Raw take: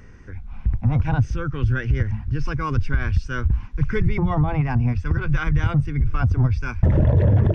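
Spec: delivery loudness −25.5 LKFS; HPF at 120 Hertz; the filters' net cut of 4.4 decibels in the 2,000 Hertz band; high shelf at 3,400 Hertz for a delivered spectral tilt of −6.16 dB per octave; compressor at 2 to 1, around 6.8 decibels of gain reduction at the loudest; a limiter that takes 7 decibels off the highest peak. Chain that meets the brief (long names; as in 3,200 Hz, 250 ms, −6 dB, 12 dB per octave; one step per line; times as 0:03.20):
high-pass filter 120 Hz
parametric band 2,000 Hz −4.5 dB
high-shelf EQ 3,400 Hz −7.5 dB
downward compressor 2 to 1, threshold −29 dBFS
level +7 dB
brickwall limiter −16.5 dBFS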